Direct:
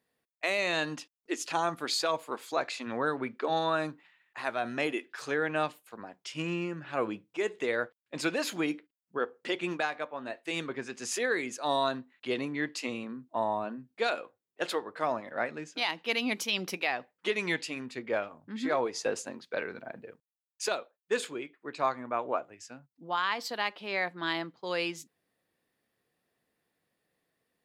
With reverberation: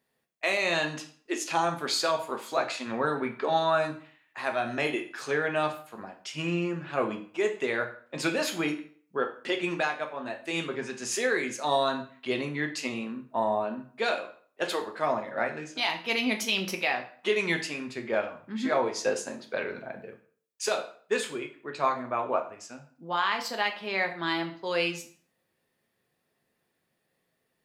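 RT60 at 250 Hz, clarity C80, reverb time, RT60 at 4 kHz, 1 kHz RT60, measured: 0.45 s, 15.0 dB, 0.50 s, 0.40 s, 0.50 s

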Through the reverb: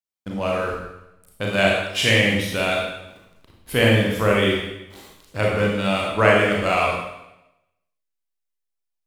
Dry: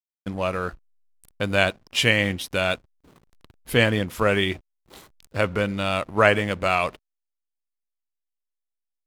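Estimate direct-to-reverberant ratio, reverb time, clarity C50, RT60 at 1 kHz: -3.0 dB, 0.90 s, 0.5 dB, 0.90 s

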